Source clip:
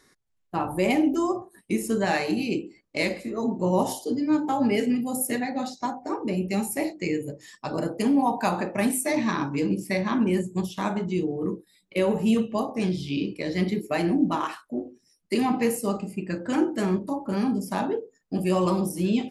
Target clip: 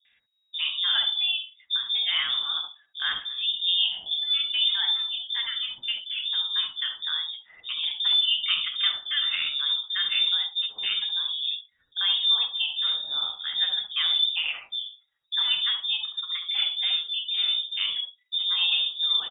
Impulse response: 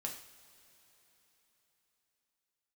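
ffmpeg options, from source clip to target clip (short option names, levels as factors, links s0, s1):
-filter_complex "[0:a]acrossover=split=370|3000[s0][s1][s2];[s1]adelay=50[s3];[s2]adelay=120[s4];[s0][s3][s4]amix=inputs=3:normalize=0,lowpass=f=3200:t=q:w=0.5098,lowpass=f=3200:t=q:w=0.6013,lowpass=f=3200:t=q:w=0.9,lowpass=f=3200:t=q:w=2.563,afreqshift=-3800"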